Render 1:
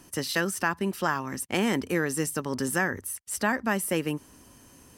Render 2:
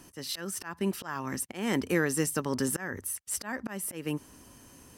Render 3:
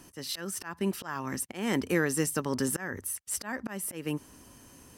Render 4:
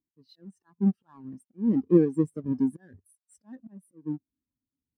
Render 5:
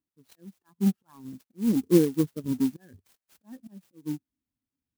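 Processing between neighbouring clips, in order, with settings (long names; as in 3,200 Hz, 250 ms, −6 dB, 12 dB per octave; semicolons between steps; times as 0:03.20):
volume swells 251 ms
no processing that can be heard
each half-wave held at its own peak; every bin expanded away from the loudest bin 2.5 to 1; level +6 dB
converter with an unsteady clock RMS 0.056 ms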